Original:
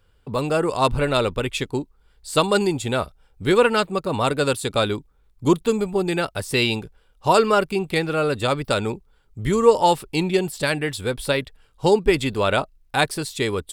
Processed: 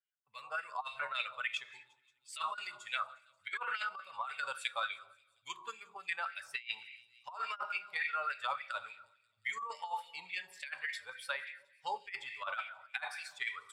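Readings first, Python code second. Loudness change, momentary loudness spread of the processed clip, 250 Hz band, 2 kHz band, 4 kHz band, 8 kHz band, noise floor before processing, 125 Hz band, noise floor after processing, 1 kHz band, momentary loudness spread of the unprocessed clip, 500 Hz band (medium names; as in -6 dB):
-18.0 dB, 12 LU, under -40 dB, -10.5 dB, -16.5 dB, -21.5 dB, -60 dBFS, under -40 dB, -75 dBFS, -16.0 dB, 10 LU, -32.5 dB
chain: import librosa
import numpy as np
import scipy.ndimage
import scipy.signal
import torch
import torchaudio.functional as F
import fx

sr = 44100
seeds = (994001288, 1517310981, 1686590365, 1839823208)

p1 = fx.bin_expand(x, sr, power=1.5)
p2 = fx.low_shelf(p1, sr, hz=280.0, db=-11.0)
p3 = fx.notch(p2, sr, hz=4100.0, q=20.0)
p4 = fx.room_shoebox(p3, sr, seeds[0], volume_m3=330.0, walls='mixed', distance_m=0.38)
p5 = fx.filter_lfo_bandpass(p4, sr, shape='sine', hz=3.5, low_hz=940.0, high_hz=2300.0, q=4.3)
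p6 = fx.level_steps(p5, sr, step_db=22)
p7 = p5 + (p6 * 10.0 ** (-3.0 / 20.0))
p8 = fx.tone_stack(p7, sr, knobs='10-0-10')
p9 = p8 + fx.echo_wet_highpass(p8, sr, ms=178, feedback_pct=72, hz=5200.0, wet_db=-22, dry=0)
p10 = fx.over_compress(p9, sr, threshold_db=-42.0, ratio=-0.5)
y = p10 * 10.0 ** (5.5 / 20.0)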